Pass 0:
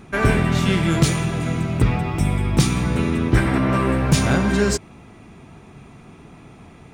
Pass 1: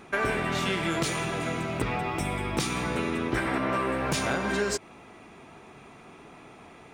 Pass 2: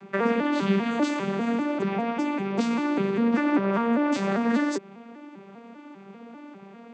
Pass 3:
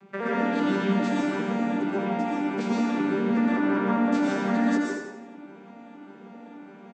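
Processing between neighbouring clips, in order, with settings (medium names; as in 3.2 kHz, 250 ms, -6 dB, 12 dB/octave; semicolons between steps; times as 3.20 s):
tone controls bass -14 dB, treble -3 dB; compression 3:1, threshold -25 dBFS, peak gain reduction 6.5 dB
vocoder on a broken chord minor triad, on G3, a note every 198 ms; trim +5 dB
feedback delay 83 ms, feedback 44%, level -7 dB; plate-style reverb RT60 0.91 s, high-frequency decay 0.6×, pre-delay 105 ms, DRR -4 dB; trim -7 dB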